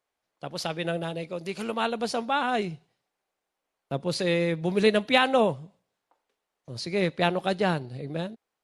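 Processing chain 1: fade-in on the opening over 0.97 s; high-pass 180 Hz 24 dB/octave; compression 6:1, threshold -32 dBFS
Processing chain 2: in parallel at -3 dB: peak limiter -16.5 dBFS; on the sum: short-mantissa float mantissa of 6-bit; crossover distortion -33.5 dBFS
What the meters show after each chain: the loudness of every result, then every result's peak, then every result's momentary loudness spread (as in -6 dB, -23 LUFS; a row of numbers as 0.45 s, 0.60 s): -37.0 LUFS, -25.0 LUFS; -20.0 dBFS, -6.5 dBFS; 8 LU, 14 LU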